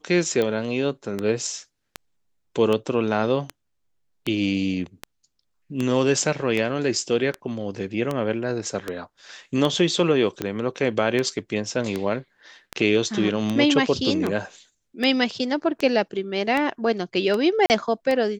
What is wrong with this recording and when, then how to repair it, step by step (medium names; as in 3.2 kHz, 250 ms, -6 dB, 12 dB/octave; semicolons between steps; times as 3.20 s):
tick 78 rpm -12 dBFS
17.66–17.70 s: dropout 39 ms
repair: de-click; interpolate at 17.66 s, 39 ms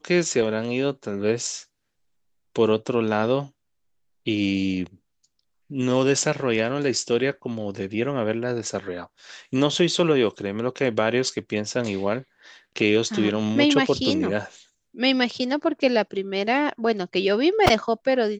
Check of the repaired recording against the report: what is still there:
nothing left